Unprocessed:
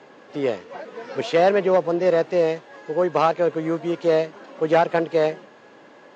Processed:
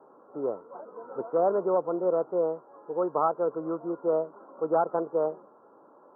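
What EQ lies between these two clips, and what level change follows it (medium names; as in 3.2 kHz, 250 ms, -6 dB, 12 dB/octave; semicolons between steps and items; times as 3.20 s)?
rippled Chebyshev low-pass 1.4 kHz, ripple 3 dB; bass shelf 270 Hz -11.5 dB; -3.0 dB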